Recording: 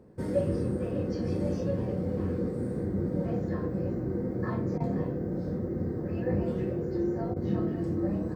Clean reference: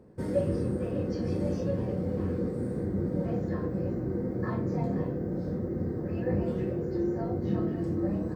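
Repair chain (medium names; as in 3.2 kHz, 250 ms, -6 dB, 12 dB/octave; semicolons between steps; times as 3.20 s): interpolate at 4.78/7.34 s, 21 ms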